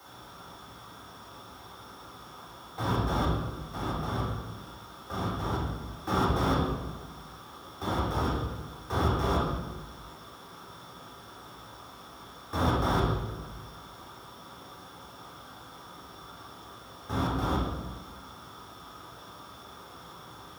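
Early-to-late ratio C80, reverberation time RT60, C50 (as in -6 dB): 3.0 dB, 1.2 s, 0.5 dB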